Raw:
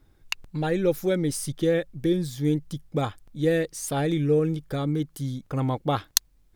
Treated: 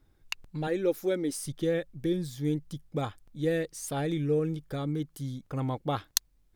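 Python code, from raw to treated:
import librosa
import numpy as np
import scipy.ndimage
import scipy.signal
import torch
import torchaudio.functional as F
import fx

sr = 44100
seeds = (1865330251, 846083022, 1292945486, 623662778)

y = fx.low_shelf_res(x, sr, hz=190.0, db=-10.5, q=1.5, at=(0.67, 1.46))
y = y * 10.0 ** (-5.5 / 20.0)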